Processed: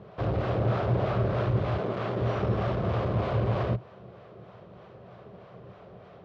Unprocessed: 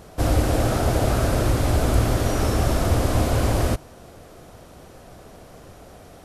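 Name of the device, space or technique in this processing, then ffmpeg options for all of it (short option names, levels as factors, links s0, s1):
guitar amplifier with harmonic tremolo: -filter_complex "[0:a]acrossover=split=570[s0][s1];[s0]aeval=exprs='val(0)*(1-0.5/2+0.5/2*cos(2*PI*3.2*n/s))':c=same[s2];[s1]aeval=exprs='val(0)*(1-0.5/2-0.5/2*cos(2*PI*3.2*n/s))':c=same[s3];[s2][s3]amix=inputs=2:normalize=0,asoftclip=type=tanh:threshold=0.126,highpass=88,equalizer=f=120:t=q:w=4:g=10,equalizer=f=190:t=q:w=4:g=9,equalizer=f=270:t=q:w=4:g=-8,equalizer=f=400:t=q:w=4:g=7,equalizer=f=580:t=q:w=4:g=5,equalizer=f=1100:t=q:w=4:g=6,lowpass=f=3500:w=0.5412,lowpass=f=3500:w=1.3066,asettb=1/sr,asplit=3[s4][s5][s6];[s4]atrim=end=1.784[s7];[s5]atrim=start=1.78:end=2.19,asetpts=PTS-STARTPTS,afade=t=in:d=0.004:c=qsin,afade=t=out:st=0.406:d=0.004:c=qsin,highpass=190[s8];[s6]atrim=start=2.186[s9];[s7][s8]acrossfade=d=0.004:c1=hsin:c2=qsin[s10];[s10][s9]acrossfade=d=0.004:c1=qsin:c2=hsin,volume=0.596"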